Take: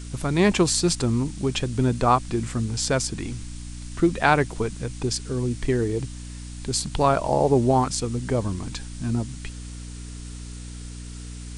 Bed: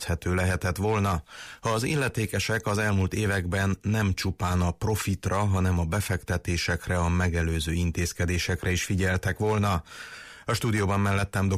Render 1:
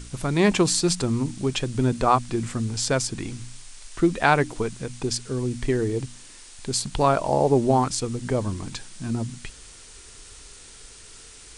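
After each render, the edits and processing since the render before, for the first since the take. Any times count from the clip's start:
hum removal 60 Hz, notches 5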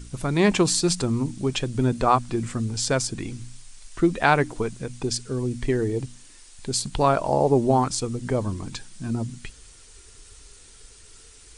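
broadband denoise 6 dB, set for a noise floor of −46 dBFS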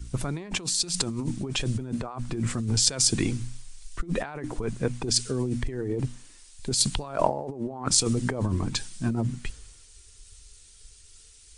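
compressor whose output falls as the input rises −29 dBFS, ratio −1
multiband upward and downward expander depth 70%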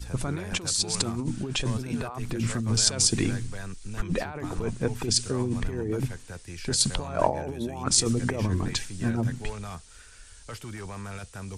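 mix in bed −13.5 dB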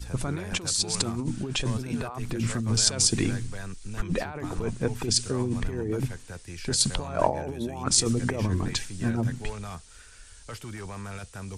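no processing that can be heard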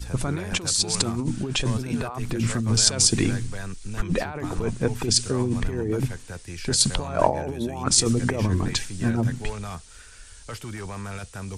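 level +3.5 dB
brickwall limiter −1 dBFS, peak gain reduction 2 dB

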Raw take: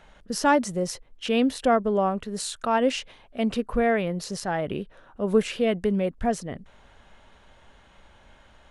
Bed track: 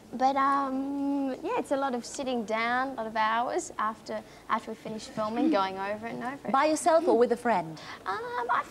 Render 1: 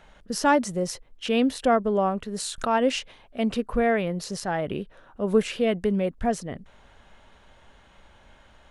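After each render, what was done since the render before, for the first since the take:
0:02.58–0:02.99: upward compression, threshold −22 dBFS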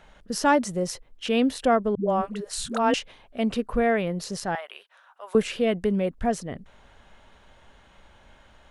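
0:01.95–0:02.94: all-pass dispersion highs, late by 132 ms, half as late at 330 Hz
0:04.55–0:05.35: high-pass filter 820 Hz 24 dB per octave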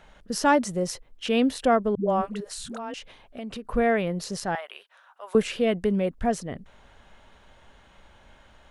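0:02.40–0:03.65: downward compressor 5 to 1, threshold −33 dBFS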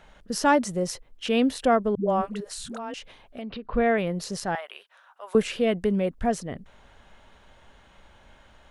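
0:03.42–0:03.98: Butterworth low-pass 4,600 Hz 48 dB per octave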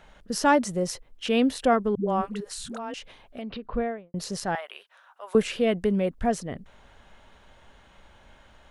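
0:01.73–0:02.61: parametric band 630 Hz −10 dB 0.21 octaves
0:03.56–0:04.14: fade out and dull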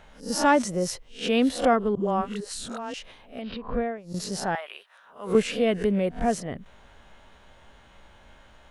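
peak hold with a rise ahead of every peak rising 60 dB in 0.30 s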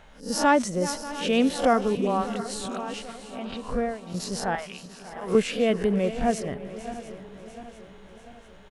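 feedback delay that plays each chunk backwards 347 ms, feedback 70%, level −14 dB
single-tap delay 589 ms −17.5 dB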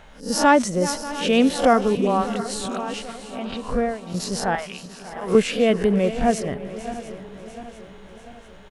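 level +4.5 dB

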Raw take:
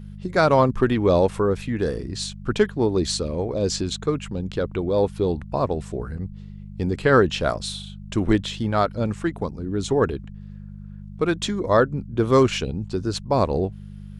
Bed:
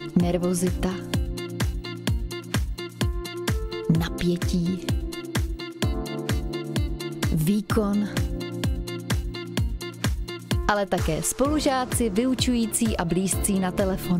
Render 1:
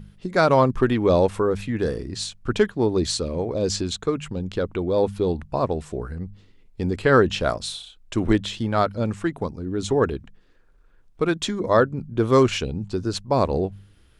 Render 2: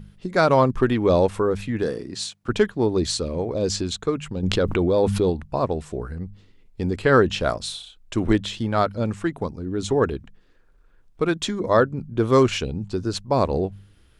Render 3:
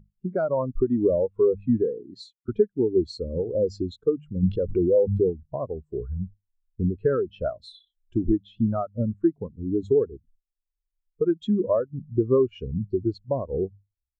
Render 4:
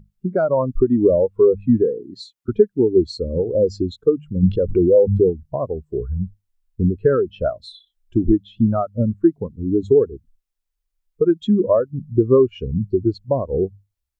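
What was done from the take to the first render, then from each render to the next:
hum removal 50 Hz, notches 4
0:01.83–0:02.49: high-pass filter 160 Hz; 0:04.43–0:05.30: envelope flattener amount 70%
downward compressor 6 to 1, threshold −24 dBFS, peak gain reduction 13 dB; every bin expanded away from the loudest bin 2.5 to 1
level +6.5 dB

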